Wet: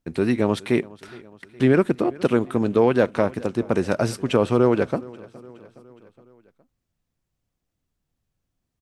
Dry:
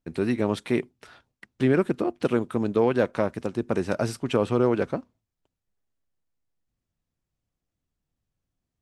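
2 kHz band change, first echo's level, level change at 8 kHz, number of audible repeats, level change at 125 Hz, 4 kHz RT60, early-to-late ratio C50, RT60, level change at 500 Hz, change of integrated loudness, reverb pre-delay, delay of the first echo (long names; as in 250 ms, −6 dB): +4.0 dB, −22.0 dB, +4.0 dB, 3, +4.0 dB, no reverb audible, no reverb audible, no reverb audible, +4.0 dB, +4.0 dB, no reverb audible, 416 ms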